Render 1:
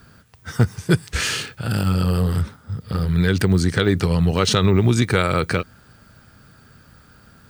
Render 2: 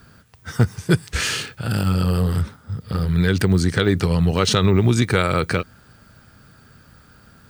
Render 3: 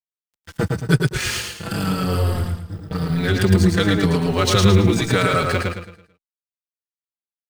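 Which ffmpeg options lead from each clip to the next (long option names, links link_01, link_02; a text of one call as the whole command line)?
ffmpeg -i in.wav -af anull out.wav
ffmpeg -i in.wav -filter_complex "[0:a]aeval=exprs='sgn(val(0))*max(abs(val(0))-0.0299,0)':channel_layout=same,asplit=2[link_01][link_02];[link_02]aecho=0:1:110|220|330|440|550:0.708|0.255|0.0917|0.033|0.0119[link_03];[link_01][link_03]amix=inputs=2:normalize=0,asplit=2[link_04][link_05];[link_05]adelay=4.9,afreqshift=-0.92[link_06];[link_04][link_06]amix=inputs=2:normalize=1,volume=4dB" out.wav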